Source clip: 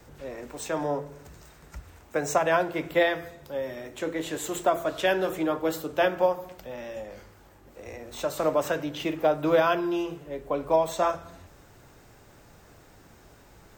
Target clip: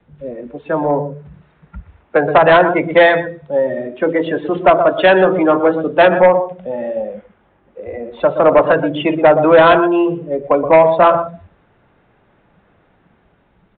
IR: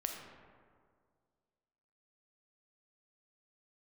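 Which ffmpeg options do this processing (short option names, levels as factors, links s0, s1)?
-filter_complex "[0:a]acrossover=split=370|2700[s0][s1][s2];[s0]asoftclip=type=hard:threshold=0.0158[s3];[s1]dynaudnorm=f=440:g=5:m=2[s4];[s3][s4][s2]amix=inputs=3:normalize=0,equalizer=f=190:t=o:w=0.76:g=8.5,aecho=1:1:122:0.299,afftdn=nr=17:nf=-30,aresample=8000,aeval=exprs='0.562*sin(PI/2*1.78*val(0)/0.562)':c=same,aresample=44100,volume=1.26"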